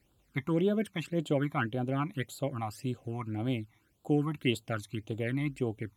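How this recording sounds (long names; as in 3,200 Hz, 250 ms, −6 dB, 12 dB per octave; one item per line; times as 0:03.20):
phaser sweep stages 12, 1.8 Hz, lowest notch 480–2,000 Hz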